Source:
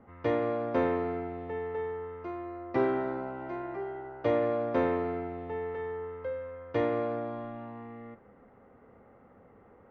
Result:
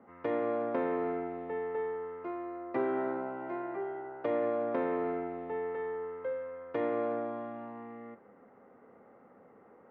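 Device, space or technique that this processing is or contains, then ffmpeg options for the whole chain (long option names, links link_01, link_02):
DJ mixer with the lows and highs turned down: -filter_complex "[0:a]acrossover=split=160 2900:gain=0.1 1 0.2[link_01][link_02][link_03];[link_01][link_02][link_03]amix=inputs=3:normalize=0,alimiter=limit=-22dB:level=0:latency=1:release=236"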